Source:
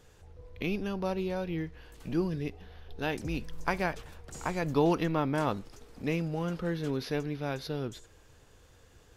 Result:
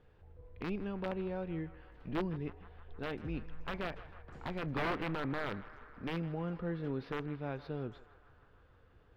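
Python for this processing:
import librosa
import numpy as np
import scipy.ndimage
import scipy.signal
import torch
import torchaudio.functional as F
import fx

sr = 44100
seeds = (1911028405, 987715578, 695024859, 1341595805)

y = (np.mod(10.0 ** (21.0 / 20.0) * x + 1.0, 2.0) - 1.0) / 10.0 ** (21.0 / 20.0)
y = fx.air_absorb(y, sr, metres=400.0)
y = fx.echo_banded(y, sr, ms=157, feedback_pct=80, hz=1300.0, wet_db=-14.5)
y = y * 10.0 ** (-4.5 / 20.0)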